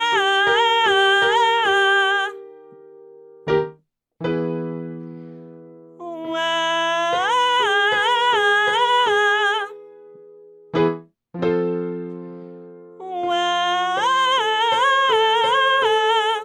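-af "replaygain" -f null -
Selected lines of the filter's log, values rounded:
track_gain = +0.3 dB
track_peak = 0.370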